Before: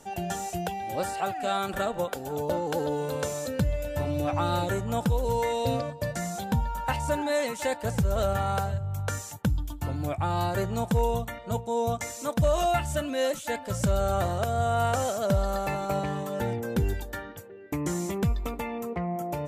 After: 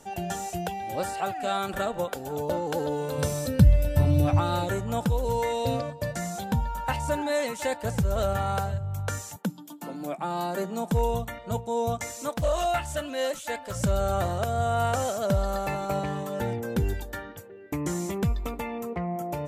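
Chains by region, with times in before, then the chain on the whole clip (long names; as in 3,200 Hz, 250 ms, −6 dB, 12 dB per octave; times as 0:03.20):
0:03.18–0:04.40: bass and treble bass +11 dB, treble +5 dB + notch filter 6,900 Hz, Q 5.2
0:09.36–0:10.92: Butterworth high-pass 160 Hz 72 dB per octave + parametric band 2,300 Hz −3.5 dB 2.2 octaves
0:12.29–0:13.76: parametric band 150 Hz −7.5 dB 2.2 octaves + highs frequency-modulated by the lows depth 0.22 ms
whole clip: no processing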